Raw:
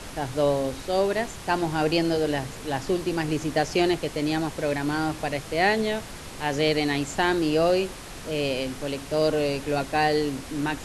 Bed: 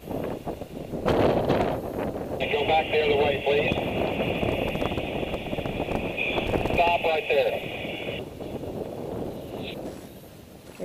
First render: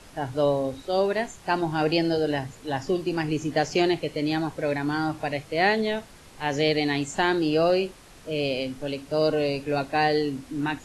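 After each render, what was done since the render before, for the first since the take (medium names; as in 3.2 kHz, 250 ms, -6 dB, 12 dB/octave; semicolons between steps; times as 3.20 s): noise print and reduce 10 dB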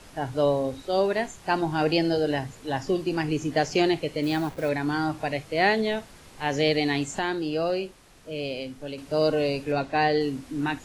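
4.23–4.69 s: send-on-delta sampling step -40 dBFS; 7.19–8.98 s: gain -5 dB; 9.72–10.21 s: distance through air 58 m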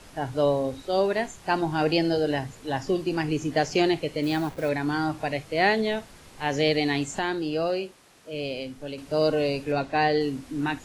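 7.66–8.32 s: high-pass 120 Hz -> 280 Hz 6 dB/octave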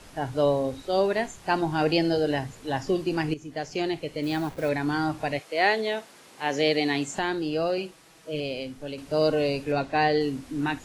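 3.34–4.66 s: fade in, from -13.5 dB; 5.38–7.17 s: high-pass 440 Hz -> 140 Hz; 7.77–8.40 s: comb 6.2 ms, depth 71%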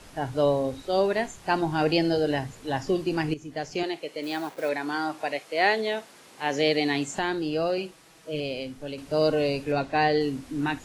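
3.83–5.42 s: high-pass 360 Hz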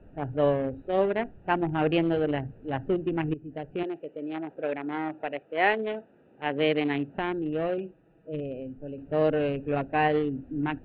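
local Wiener filter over 41 samples; steep low-pass 3.2 kHz 48 dB/octave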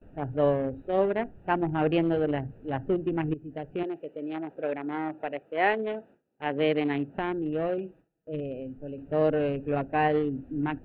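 dynamic bell 3.2 kHz, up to -4 dB, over -45 dBFS, Q 0.77; gate with hold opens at -46 dBFS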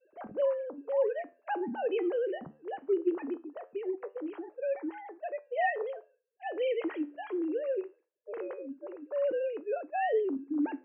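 formants replaced by sine waves; flange 0.21 Hz, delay 8.9 ms, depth 4.9 ms, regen +78%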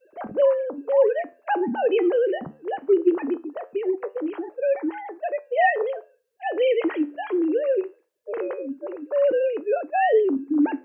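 trim +10 dB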